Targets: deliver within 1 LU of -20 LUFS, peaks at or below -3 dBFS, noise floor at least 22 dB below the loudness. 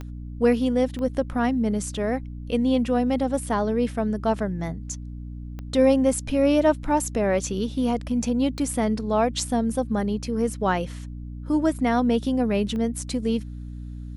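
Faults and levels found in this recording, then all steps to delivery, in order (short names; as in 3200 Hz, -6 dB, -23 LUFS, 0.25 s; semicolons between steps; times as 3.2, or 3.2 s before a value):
clicks 5; hum 60 Hz; harmonics up to 300 Hz; hum level -33 dBFS; loudness -24.0 LUFS; peak -8.0 dBFS; loudness target -20.0 LUFS
-> de-click; notches 60/120/180/240/300 Hz; gain +4 dB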